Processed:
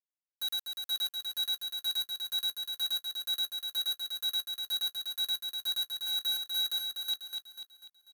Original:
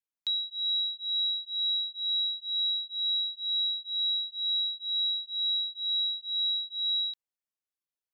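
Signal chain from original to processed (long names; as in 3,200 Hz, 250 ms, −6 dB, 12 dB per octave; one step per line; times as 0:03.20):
0:05.88–0:06.67: high-shelf EQ 3,500 Hz → 3,600 Hz −6.5 dB
compressor whose output falls as the input rises −37 dBFS, ratio −0.5
bit reduction 6 bits
repeating echo 246 ms, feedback 47%, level −5 dB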